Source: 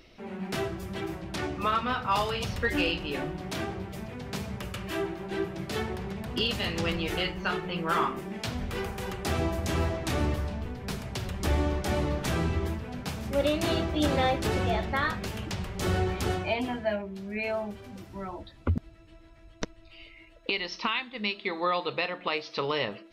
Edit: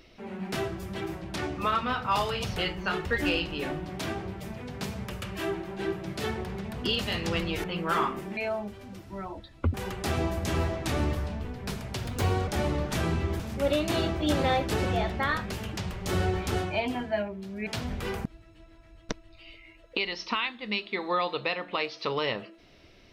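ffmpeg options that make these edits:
-filter_complex "[0:a]asplit=11[a][b][c][d][e][f][g][h][i][j][k];[a]atrim=end=2.572[l];[b]atrim=start=7.158:end=7.642[m];[c]atrim=start=2.568:end=7.162[n];[d]atrim=start=7.638:end=8.372[o];[e]atrim=start=17.398:end=18.772[p];[f]atrim=start=8.948:end=11.264[q];[g]atrim=start=11.26:end=11.8,asetpts=PTS-STARTPTS,asetrate=56007,aresample=44100,atrim=end_sample=18751,asetpts=PTS-STARTPTS[r];[h]atrim=start=11.796:end=12.722[s];[i]atrim=start=13.128:end=17.402[t];[j]atrim=start=8.368:end=8.952[u];[k]atrim=start=18.768[v];[l][m]acrossfade=d=0.004:c1=hsin:c2=hsin[w];[w][n]acrossfade=d=0.004:c1=hsin:c2=hsin[x];[x][o]acrossfade=d=0.004:c1=hsin:c2=hsin[y];[y][p]acrossfade=d=0.004:c1=hsin:c2=hsin[z];[z][q]acrossfade=d=0.004:c1=hsin:c2=hsin[aa];[aa][r]acrossfade=d=0.004:c1=hsin:c2=hsin[ab];[ab][s]acrossfade=d=0.004:c1=hsin:c2=hsin[ac];[ac][t]acrossfade=d=0.004:c1=hsin:c2=hsin[ad];[ad][u]acrossfade=d=0.004:c1=hsin:c2=hsin[ae];[ae][v]acrossfade=d=0.004:c1=hsin:c2=hsin"

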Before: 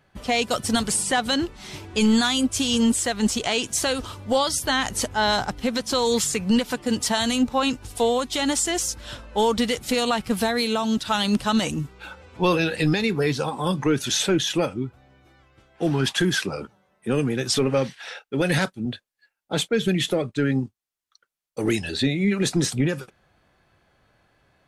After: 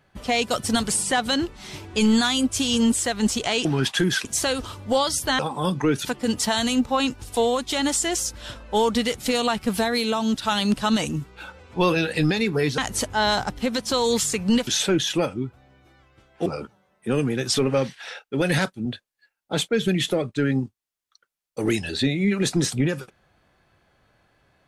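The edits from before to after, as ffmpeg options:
-filter_complex "[0:a]asplit=8[a][b][c][d][e][f][g][h];[a]atrim=end=3.652[i];[b]atrim=start=15.858:end=16.462[j];[c]atrim=start=3.648:end=4.792[k];[d]atrim=start=13.408:end=14.072[l];[e]atrim=start=6.678:end=13.412[m];[f]atrim=start=4.788:end=6.682[n];[g]atrim=start=14.068:end=15.862[o];[h]atrim=start=16.458[p];[i][j]acrossfade=d=0.004:c1=hsin:c2=hsin[q];[q][k]acrossfade=d=0.004:c1=hsin:c2=hsin[r];[r][l]acrossfade=d=0.004:c1=hsin:c2=hsin[s];[s][m]acrossfade=d=0.004:c1=hsin:c2=hsin[t];[t][n]acrossfade=d=0.004:c1=hsin:c2=hsin[u];[u][o]acrossfade=d=0.004:c1=hsin:c2=hsin[v];[v][p]acrossfade=d=0.004:c1=hsin:c2=hsin"

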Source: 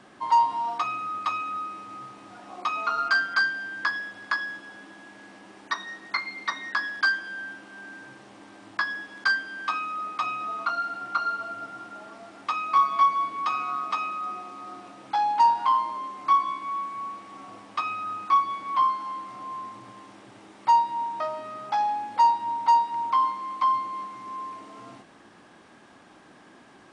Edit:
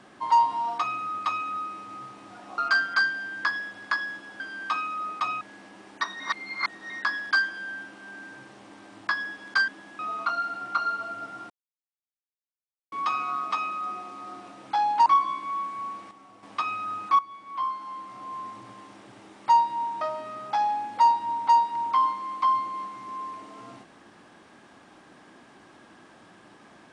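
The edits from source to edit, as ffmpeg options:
-filter_complex "[0:a]asplit=14[a][b][c][d][e][f][g][h][i][j][k][l][m][n];[a]atrim=end=2.582[o];[b]atrim=start=2.978:end=4.802[p];[c]atrim=start=9.378:end=10.392[q];[d]atrim=start=5.108:end=5.902[r];[e]atrim=start=5.898:end=6.602,asetpts=PTS-STARTPTS,areverse[s];[f]atrim=start=6.598:end=9.382[t];[g]atrim=start=4.798:end=5.112[u];[h]atrim=start=10.388:end=11.9,asetpts=PTS-STARTPTS,afade=t=out:st=1.508:d=0.004:c=hsin[v];[i]atrim=start=11.9:end=13.32,asetpts=PTS-STARTPTS,volume=0[w];[j]atrim=start=13.32:end=15.462,asetpts=PTS-STARTPTS,afade=t=in:d=0.004:c=hsin[x];[k]atrim=start=16.248:end=17.302[y];[l]atrim=start=17.298:end=17.622,asetpts=PTS-STARTPTS,volume=-8.5dB[z];[m]atrim=start=17.618:end=18.38,asetpts=PTS-STARTPTS,afade=t=out:st=0.758:d=0.004:c=hsin:silence=0.16788[aa];[n]atrim=start=18.38,asetpts=PTS-STARTPTS,afade=t=in:d=1.31:silence=0.16788[ab];[o][p]acrossfade=d=0.004:c1=hsin:c2=hsin[ac];[ac][q]acrossfade=d=0.004:c1=hsin:c2=hsin[ad];[ad][r]acrossfade=d=0.004:c1=hsin:c2=hsin[ae];[ae][s]acrossfade=d=0.004:c1=hsin:c2=hsin[af];[af][t]acrossfade=d=0.004:c1=hsin:c2=hsin[ag];[ag][u]acrossfade=d=0.004:c1=hsin:c2=hsin[ah];[v][w][x]concat=n=3:v=0:a=1[ai];[ah][ai]acrossfade=d=0.004:c1=hsin:c2=hsin[aj];[aj][y]acrossfade=d=0.004:c1=hsin:c2=hsin[ak];[ak][z]acrossfade=d=0.004:c1=hsin:c2=hsin[al];[aa][ab]concat=n=2:v=0:a=1[am];[al][am]acrossfade=d=0.004:c1=hsin:c2=hsin"

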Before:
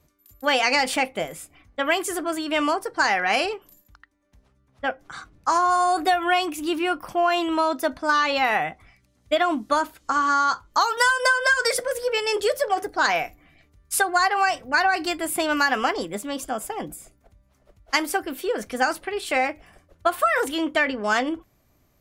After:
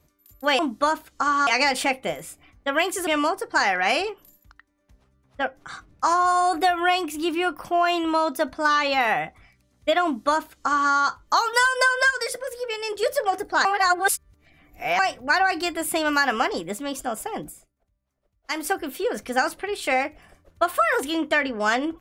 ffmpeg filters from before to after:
-filter_complex "[0:a]asplit=10[a][b][c][d][e][f][g][h][i][j];[a]atrim=end=0.592[k];[b]atrim=start=9.478:end=10.362[l];[c]atrim=start=0.588:end=2.192[m];[d]atrim=start=2.508:end=11.552[n];[e]atrim=start=11.548:end=12.472,asetpts=PTS-STARTPTS,volume=-5.5dB[o];[f]atrim=start=12.468:end=13.092[p];[g]atrim=start=13.088:end=14.432,asetpts=PTS-STARTPTS,areverse[q];[h]atrim=start=14.428:end=17.12,asetpts=PTS-STARTPTS,afade=t=out:st=2.462:d=0.23:silence=0.149624[r];[i]atrim=start=17.12:end=17.88,asetpts=PTS-STARTPTS,volume=-16.5dB[s];[j]atrim=start=17.88,asetpts=PTS-STARTPTS,afade=t=in:d=0.23:silence=0.149624[t];[k][l]acrossfade=d=0.004:c1=hsin:c2=hsin[u];[u][m]acrossfade=d=0.004:c1=hsin:c2=hsin[v];[v][n]acrossfade=d=0.004:c1=hsin:c2=hsin[w];[w][o]acrossfade=d=0.004:c1=hsin:c2=hsin[x];[x][p]acrossfade=d=0.004:c1=hsin:c2=hsin[y];[y][q]acrossfade=d=0.004:c1=hsin:c2=hsin[z];[r][s][t]concat=n=3:v=0:a=1[aa];[z][aa]acrossfade=d=0.004:c1=hsin:c2=hsin"

